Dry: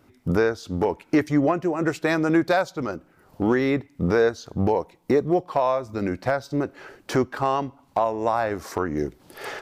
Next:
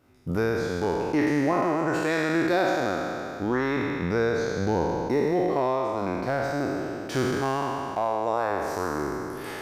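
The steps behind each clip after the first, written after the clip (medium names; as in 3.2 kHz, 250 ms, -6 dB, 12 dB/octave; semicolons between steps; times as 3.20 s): spectral sustain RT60 2.95 s; trim -7 dB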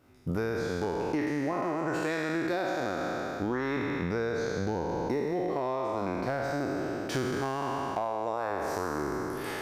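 compression, threshold -27 dBFS, peak gain reduction 8.5 dB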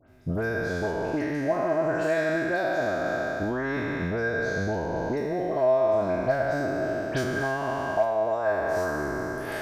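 bass shelf 150 Hz +6 dB; small resonant body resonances 640/1600 Hz, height 17 dB, ringing for 90 ms; phase dispersion highs, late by 83 ms, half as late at 2.5 kHz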